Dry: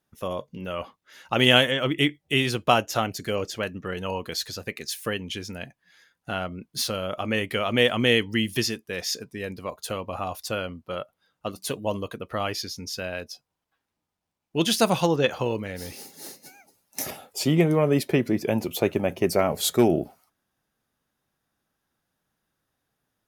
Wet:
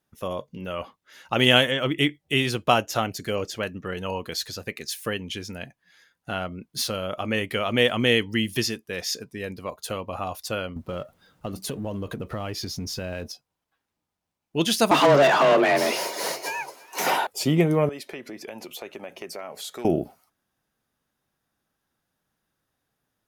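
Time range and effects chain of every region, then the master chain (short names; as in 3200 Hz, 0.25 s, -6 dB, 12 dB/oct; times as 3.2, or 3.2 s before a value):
10.76–13.32 G.711 law mismatch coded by mu + low shelf 460 Hz +9.5 dB + compressor 4:1, threshold -28 dBFS
14.91–17.27 overdrive pedal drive 34 dB, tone 1400 Hz, clips at -8.5 dBFS + frequency shift +140 Hz + echo 0.336 s -21.5 dB
17.89–19.85 weighting filter A + compressor 3:1, threshold -36 dBFS
whole clip: dry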